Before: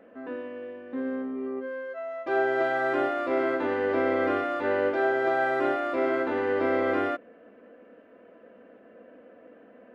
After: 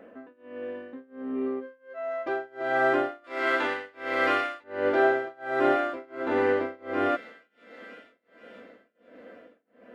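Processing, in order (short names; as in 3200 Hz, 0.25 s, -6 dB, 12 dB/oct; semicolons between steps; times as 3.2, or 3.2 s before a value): thin delay 0.482 s, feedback 65%, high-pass 2500 Hz, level -9 dB; tremolo 1.4 Hz, depth 98%; 3.24–4.64 tilt shelf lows -9.5 dB; gain +4 dB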